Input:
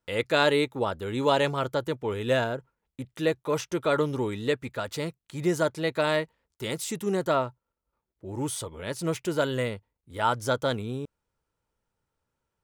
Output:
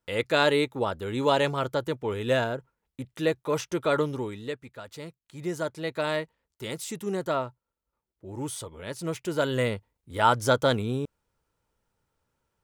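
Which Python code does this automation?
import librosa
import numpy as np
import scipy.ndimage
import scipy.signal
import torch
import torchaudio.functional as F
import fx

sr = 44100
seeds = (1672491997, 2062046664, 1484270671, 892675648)

y = fx.gain(x, sr, db=fx.line((3.98, 0.0), (4.7, -10.5), (6.06, -3.0), (9.2, -3.0), (9.73, 4.0)))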